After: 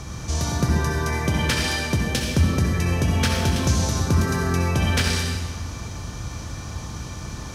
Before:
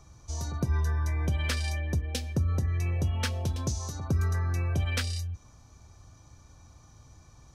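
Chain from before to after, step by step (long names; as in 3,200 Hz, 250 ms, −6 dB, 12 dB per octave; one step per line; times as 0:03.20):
compressor on every frequency bin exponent 0.6
convolution reverb RT60 1.5 s, pre-delay 58 ms, DRR 0 dB
level +6 dB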